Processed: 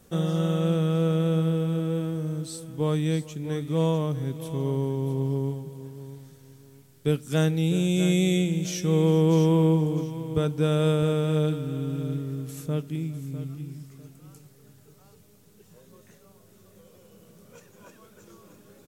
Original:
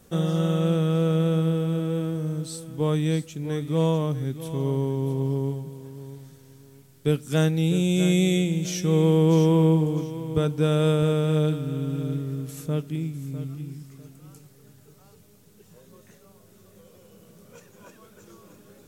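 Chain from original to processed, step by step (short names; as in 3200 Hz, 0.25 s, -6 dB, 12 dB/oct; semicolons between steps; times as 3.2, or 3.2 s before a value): echo 0.407 s -21 dB; gain -1.5 dB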